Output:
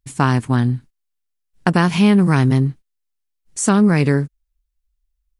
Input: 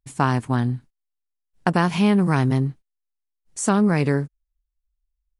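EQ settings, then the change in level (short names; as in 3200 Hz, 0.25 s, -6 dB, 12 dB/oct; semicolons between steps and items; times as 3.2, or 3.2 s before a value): bell 740 Hz -4.5 dB 1.5 oct; +5.5 dB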